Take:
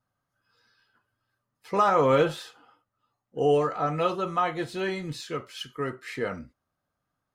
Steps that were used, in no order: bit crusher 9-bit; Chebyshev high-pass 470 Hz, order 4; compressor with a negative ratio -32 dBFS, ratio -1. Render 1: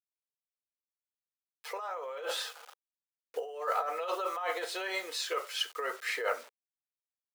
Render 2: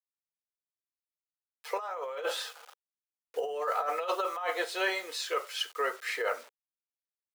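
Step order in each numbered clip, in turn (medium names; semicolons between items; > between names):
bit crusher > compressor with a negative ratio > Chebyshev high-pass; bit crusher > Chebyshev high-pass > compressor with a negative ratio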